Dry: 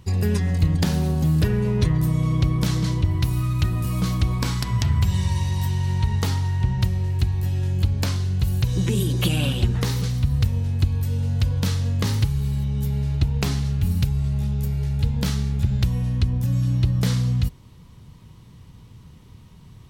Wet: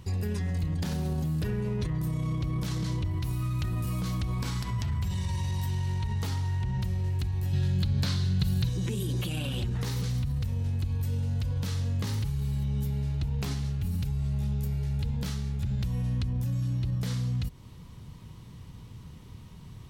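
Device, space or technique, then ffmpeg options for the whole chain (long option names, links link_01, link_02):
stacked limiters: -filter_complex "[0:a]alimiter=limit=-13.5dB:level=0:latency=1:release=258,alimiter=limit=-18dB:level=0:latency=1:release=19,alimiter=limit=-23.5dB:level=0:latency=1:release=130,asettb=1/sr,asplit=3[link_01][link_02][link_03];[link_01]atrim=end=7.534[link_04];[link_02]atrim=start=7.53:end=8.69,asetpts=PTS-STARTPTS,afade=type=in:duration=0.004:curve=qsin,afade=type=out:start_time=1.156:duration=0.004:curve=qsin,equalizer=frequency=160:width_type=o:width=0.67:gain=11,equalizer=frequency=1600:width_type=o:width=0.67:gain=5,equalizer=frequency=4000:width_type=o:width=0.67:gain=10[link_05];[link_03]atrim=start=8.686[link_06];[link_04][link_05]acrossfade=duration=0.004:curve1=hsin:curve2=qsin[link_07];[link_07][link_06]acrossfade=duration=0.004:curve1=qsin:curve2=hsin"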